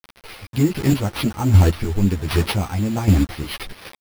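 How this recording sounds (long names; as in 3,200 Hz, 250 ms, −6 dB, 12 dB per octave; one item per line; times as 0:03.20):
a quantiser's noise floor 6 bits, dither none
chopped level 1.3 Hz, depth 60%, duty 20%
aliases and images of a low sample rate 7,200 Hz, jitter 0%
a shimmering, thickened sound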